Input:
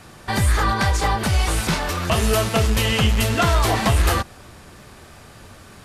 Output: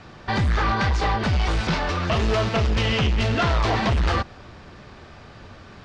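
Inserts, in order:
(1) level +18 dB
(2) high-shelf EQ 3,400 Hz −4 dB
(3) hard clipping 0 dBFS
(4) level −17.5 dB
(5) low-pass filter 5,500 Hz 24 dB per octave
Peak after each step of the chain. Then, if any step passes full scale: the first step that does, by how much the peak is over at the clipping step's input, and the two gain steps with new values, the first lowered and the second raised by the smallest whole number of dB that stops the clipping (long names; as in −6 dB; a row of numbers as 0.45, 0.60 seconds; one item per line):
+9.0, +9.0, 0.0, −17.5, −15.5 dBFS
step 1, 9.0 dB
step 1 +9 dB, step 4 −8.5 dB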